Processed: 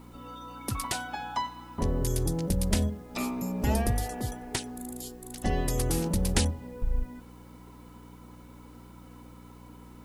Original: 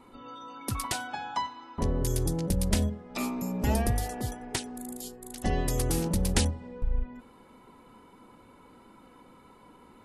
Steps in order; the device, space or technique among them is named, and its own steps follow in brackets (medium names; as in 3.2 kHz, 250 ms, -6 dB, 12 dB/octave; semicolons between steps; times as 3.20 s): video cassette with head-switching buzz (mains buzz 60 Hz, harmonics 5, -50 dBFS -2 dB/octave; white noise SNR 35 dB)